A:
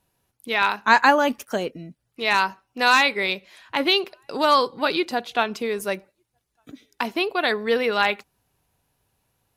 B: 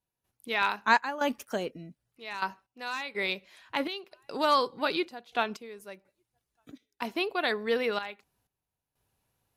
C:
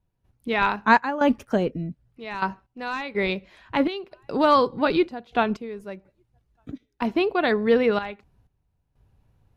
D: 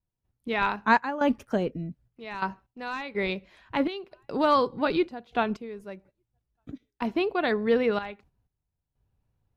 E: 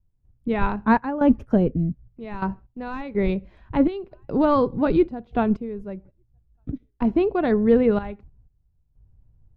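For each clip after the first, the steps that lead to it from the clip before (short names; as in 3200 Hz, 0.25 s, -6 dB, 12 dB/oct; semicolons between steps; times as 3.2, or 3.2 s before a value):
step gate ".xxx.xxxx.x." 62 bpm -12 dB; gain -6.5 dB
RIAA curve playback; gain +6 dB
gate -52 dBFS, range -8 dB; gain -4 dB
tilt -4.5 dB/oct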